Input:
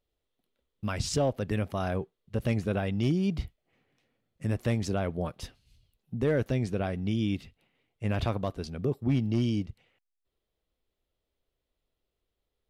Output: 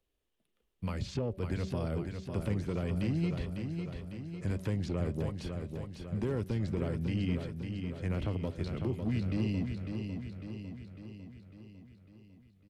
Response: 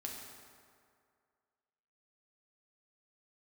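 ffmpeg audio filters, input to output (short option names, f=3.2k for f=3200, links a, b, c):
-filter_complex "[0:a]acrossover=split=100|490|3600[a][b][c][d];[a]acompressor=threshold=-42dB:ratio=4[e];[b]acompressor=threshold=-29dB:ratio=4[f];[c]acompressor=threshold=-43dB:ratio=4[g];[d]acompressor=threshold=-55dB:ratio=4[h];[e][f][g][h]amix=inputs=4:normalize=0,bandreject=f=213.5:t=h:w=4,bandreject=f=427:t=h:w=4,bandreject=f=640.5:t=h:w=4,asetrate=39289,aresample=44100,atempo=1.12246,asoftclip=type=tanh:threshold=-23.5dB,aecho=1:1:551|1102|1653|2204|2755|3306|3857:0.501|0.286|0.163|0.0928|0.0529|0.0302|0.0172"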